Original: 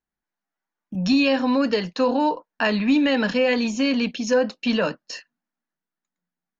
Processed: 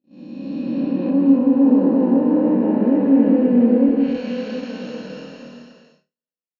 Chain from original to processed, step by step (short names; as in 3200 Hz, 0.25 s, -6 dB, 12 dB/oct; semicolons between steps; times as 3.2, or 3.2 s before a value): time blur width 1.25 s; gate -47 dBFS, range -37 dB; bell 300 Hz +14 dB 2.4 oct, from 3.89 s +3.5 dB; treble ducked by the level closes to 1100 Hz, closed at -13.5 dBFS; flutter echo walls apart 4.4 m, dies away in 0.2 s; non-linear reverb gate 0.3 s rising, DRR 1 dB; gain -4.5 dB